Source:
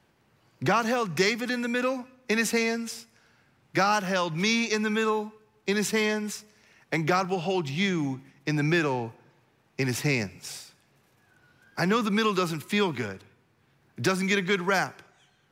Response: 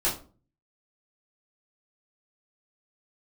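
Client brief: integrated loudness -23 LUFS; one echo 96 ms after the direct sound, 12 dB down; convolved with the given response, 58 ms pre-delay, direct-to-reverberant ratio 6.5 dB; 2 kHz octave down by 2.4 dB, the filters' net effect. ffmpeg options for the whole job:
-filter_complex "[0:a]equalizer=f=2000:t=o:g=-3,aecho=1:1:96:0.251,asplit=2[s0][s1];[1:a]atrim=start_sample=2205,adelay=58[s2];[s1][s2]afir=irnorm=-1:irlink=0,volume=0.15[s3];[s0][s3]amix=inputs=2:normalize=0,volume=1.5"

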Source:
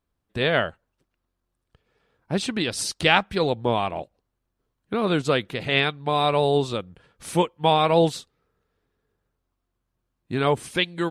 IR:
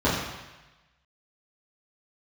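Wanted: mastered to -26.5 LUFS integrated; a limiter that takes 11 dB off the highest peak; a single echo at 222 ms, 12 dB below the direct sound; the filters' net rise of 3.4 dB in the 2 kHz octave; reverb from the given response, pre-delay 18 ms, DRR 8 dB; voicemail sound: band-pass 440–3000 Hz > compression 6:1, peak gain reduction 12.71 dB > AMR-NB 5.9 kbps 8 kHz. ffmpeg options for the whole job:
-filter_complex "[0:a]equalizer=f=2000:t=o:g=5.5,alimiter=limit=0.282:level=0:latency=1,aecho=1:1:222:0.251,asplit=2[s0][s1];[1:a]atrim=start_sample=2205,adelay=18[s2];[s1][s2]afir=irnorm=-1:irlink=0,volume=0.0562[s3];[s0][s3]amix=inputs=2:normalize=0,highpass=440,lowpass=3000,acompressor=threshold=0.0316:ratio=6,volume=3.16" -ar 8000 -c:a libopencore_amrnb -b:a 5900

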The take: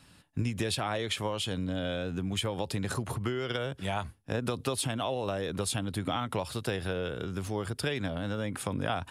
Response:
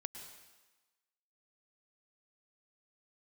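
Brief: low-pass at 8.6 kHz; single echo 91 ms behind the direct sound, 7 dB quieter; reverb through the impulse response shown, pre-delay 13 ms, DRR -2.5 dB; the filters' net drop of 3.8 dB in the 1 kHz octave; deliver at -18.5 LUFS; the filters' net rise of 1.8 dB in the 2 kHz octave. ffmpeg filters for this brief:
-filter_complex "[0:a]lowpass=8600,equalizer=f=1000:t=o:g=-7,equalizer=f=2000:t=o:g=5,aecho=1:1:91:0.447,asplit=2[s0][s1];[1:a]atrim=start_sample=2205,adelay=13[s2];[s1][s2]afir=irnorm=-1:irlink=0,volume=1.78[s3];[s0][s3]amix=inputs=2:normalize=0,volume=3.16"

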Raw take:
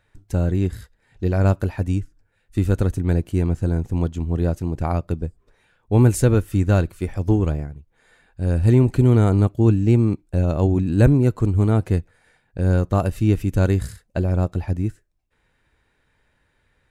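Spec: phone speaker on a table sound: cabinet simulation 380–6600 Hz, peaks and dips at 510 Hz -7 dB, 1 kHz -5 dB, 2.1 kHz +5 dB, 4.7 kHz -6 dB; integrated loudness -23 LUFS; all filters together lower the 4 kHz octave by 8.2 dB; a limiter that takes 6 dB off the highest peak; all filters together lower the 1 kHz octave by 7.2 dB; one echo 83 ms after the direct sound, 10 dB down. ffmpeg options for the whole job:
-af "equalizer=f=1000:t=o:g=-8,equalizer=f=4000:t=o:g=-8.5,alimiter=limit=0.355:level=0:latency=1,highpass=f=380:w=0.5412,highpass=f=380:w=1.3066,equalizer=f=510:t=q:w=4:g=-7,equalizer=f=1000:t=q:w=4:g=-5,equalizer=f=2100:t=q:w=4:g=5,equalizer=f=4700:t=q:w=4:g=-6,lowpass=f=6600:w=0.5412,lowpass=f=6600:w=1.3066,aecho=1:1:83:0.316,volume=3.76"

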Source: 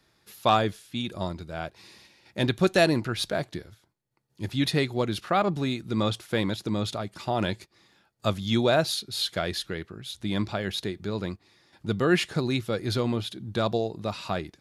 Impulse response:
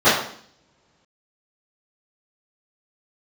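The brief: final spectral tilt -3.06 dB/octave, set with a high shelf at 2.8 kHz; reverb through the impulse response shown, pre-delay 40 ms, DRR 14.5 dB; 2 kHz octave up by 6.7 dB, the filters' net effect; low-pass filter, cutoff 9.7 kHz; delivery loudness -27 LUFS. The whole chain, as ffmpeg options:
-filter_complex "[0:a]lowpass=9700,equalizer=f=2000:t=o:g=7,highshelf=f=2800:g=4,asplit=2[s0][s1];[1:a]atrim=start_sample=2205,adelay=40[s2];[s1][s2]afir=irnorm=-1:irlink=0,volume=0.01[s3];[s0][s3]amix=inputs=2:normalize=0,volume=0.841"

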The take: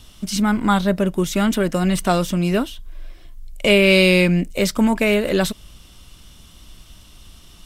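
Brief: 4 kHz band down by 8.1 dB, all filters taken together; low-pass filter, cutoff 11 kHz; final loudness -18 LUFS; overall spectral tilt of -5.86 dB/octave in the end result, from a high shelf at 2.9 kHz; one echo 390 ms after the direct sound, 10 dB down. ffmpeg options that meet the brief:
-af "lowpass=11000,highshelf=f=2900:g=-8,equalizer=f=4000:t=o:g=-5.5,aecho=1:1:390:0.316,volume=1.12"

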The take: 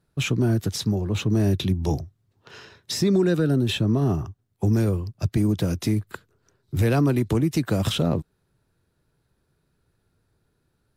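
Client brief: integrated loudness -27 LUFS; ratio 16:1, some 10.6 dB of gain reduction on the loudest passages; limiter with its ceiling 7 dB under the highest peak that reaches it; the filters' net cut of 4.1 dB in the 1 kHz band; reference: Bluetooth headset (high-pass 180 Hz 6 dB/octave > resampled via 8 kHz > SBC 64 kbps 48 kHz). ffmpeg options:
-af "equalizer=f=1000:t=o:g=-6,acompressor=threshold=0.0447:ratio=16,alimiter=level_in=1.12:limit=0.0631:level=0:latency=1,volume=0.891,highpass=f=180:p=1,aresample=8000,aresample=44100,volume=3.35" -ar 48000 -c:a sbc -b:a 64k

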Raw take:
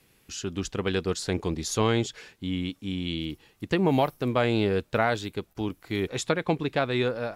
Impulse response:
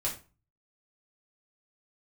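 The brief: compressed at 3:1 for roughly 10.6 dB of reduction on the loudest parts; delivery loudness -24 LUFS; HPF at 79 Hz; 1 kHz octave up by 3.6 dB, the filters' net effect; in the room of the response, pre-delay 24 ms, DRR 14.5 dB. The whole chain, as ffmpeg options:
-filter_complex "[0:a]highpass=79,equalizer=f=1000:t=o:g=5,acompressor=threshold=0.0282:ratio=3,asplit=2[s0][s1];[1:a]atrim=start_sample=2205,adelay=24[s2];[s1][s2]afir=irnorm=-1:irlink=0,volume=0.112[s3];[s0][s3]amix=inputs=2:normalize=0,volume=3.35"

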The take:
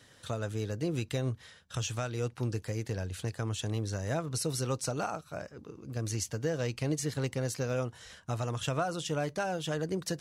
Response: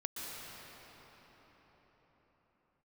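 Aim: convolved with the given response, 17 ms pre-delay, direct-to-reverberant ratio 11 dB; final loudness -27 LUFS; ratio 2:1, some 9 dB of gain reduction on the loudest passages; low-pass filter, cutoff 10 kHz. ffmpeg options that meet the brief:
-filter_complex "[0:a]lowpass=10000,acompressor=threshold=0.00562:ratio=2,asplit=2[s0][s1];[1:a]atrim=start_sample=2205,adelay=17[s2];[s1][s2]afir=irnorm=-1:irlink=0,volume=0.224[s3];[s0][s3]amix=inputs=2:normalize=0,volume=5.96"

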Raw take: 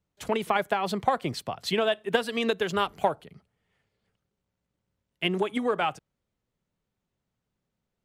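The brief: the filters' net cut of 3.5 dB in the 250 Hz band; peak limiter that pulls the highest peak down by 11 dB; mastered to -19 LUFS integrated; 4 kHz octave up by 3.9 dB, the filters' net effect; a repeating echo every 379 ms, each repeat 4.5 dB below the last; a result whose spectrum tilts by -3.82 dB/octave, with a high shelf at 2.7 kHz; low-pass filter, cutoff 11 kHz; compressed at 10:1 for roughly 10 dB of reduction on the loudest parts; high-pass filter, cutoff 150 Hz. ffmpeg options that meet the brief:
-af "highpass=150,lowpass=11000,equalizer=f=250:t=o:g=-3.5,highshelf=f=2700:g=-4.5,equalizer=f=4000:t=o:g=9,acompressor=threshold=0.0251:ratio=10,alimiter=level_in=1.78:limit=0.0631:level=0:latency=1,volume=0.562,aecho=1:1:379|758|1137|1516|1895|2274|2653|3032|3411:0.596|0.357|0.214|0.129|0.0772|0.0463|0.0278|0.0167|0.01,volume=11.2"

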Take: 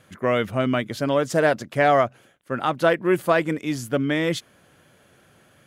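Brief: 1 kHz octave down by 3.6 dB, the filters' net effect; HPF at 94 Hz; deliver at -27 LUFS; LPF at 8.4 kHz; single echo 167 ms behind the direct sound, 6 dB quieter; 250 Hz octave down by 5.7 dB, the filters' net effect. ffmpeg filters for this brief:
-af "highpass=94,lowpass=8400,equalizer=f=250:t=o:g=-7.5,equalizer=f=1000:t=o:g=-5,aecho=1:1:167:0.501,volume=0.75"

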